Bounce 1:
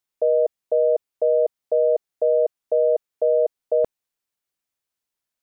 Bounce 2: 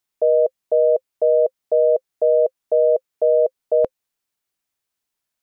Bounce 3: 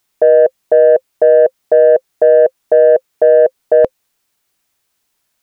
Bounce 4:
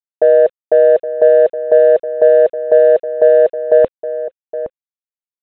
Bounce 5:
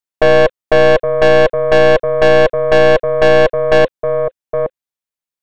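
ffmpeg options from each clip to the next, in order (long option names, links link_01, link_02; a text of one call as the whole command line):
ffmpeg -i in.wav -af "bandreject=frequency=520:width=12,volume=3.5dB" out.wav
ffmpeg -i in.wav -af "acontrast=59,alimiter=level_in=8.5dB:limit=-1dB:release=50:level=0:latency=1,volume=-1dB" out.wav
ffmpeg -i in.wav -filter_complex "[0:a]aresample=8000,acrusher=bits=7:mix=0:aa=0.000001,aresample=44100,asplit=2[link_01][link_02];[link_02]adelay=816.3,volume=-12dB,highshelf=frequency=4000:gain=-18.4[link_03];[link_01][link_03]amix=inputs=2:normalize=0,volume=-1dB" out.wav
ffmpeg -i in.wav -af "aeval=exprs='(tanh(5.62*val(0)+0.6)-tanh(0.6))/5.62':channel_layout=same,volume=8.5dB" out.wav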